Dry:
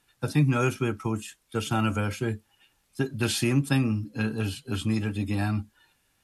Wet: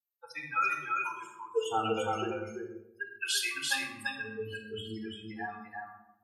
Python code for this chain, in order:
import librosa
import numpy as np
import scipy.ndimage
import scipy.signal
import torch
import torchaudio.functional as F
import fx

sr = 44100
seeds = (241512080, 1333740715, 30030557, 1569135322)

p1 = fx.bin_expand(x, sr, power=3.0)
p2 = fx.hum_notches(p1, sr, base_hz=60, count=10)
p3 = fx.filter_lfo_highpass(p2, sr, shape='sine', hz=0.38, low_hz=320.0, high_hz=1500.0, q=1.4)
p4 = fx.spec_gate(p3, sr, threshold_db=-25, keep='strong')
p5 = p4 + fx.echo_single(p4, sr, ms=340, db=-3.5, dry=0)
y = fx.room_shoebox(p5, sr, seeds[0], volume_m3=2900.0, walls='furnished', distance_m=4.0)